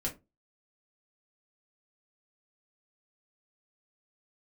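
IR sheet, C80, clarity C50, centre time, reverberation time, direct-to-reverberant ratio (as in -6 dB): 22.0 dB, 14.0 dB, 15 ms, 0.25 s, -3.0 dB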